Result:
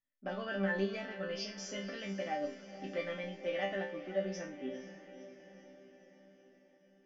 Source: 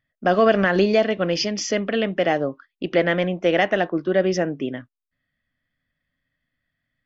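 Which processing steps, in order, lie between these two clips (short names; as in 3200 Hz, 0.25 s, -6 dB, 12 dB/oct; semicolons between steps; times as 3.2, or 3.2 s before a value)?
resonator bank G3 sus4, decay 0.37 s; on a send: diffused feedback echo 0.502 s, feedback 59%, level -13 dB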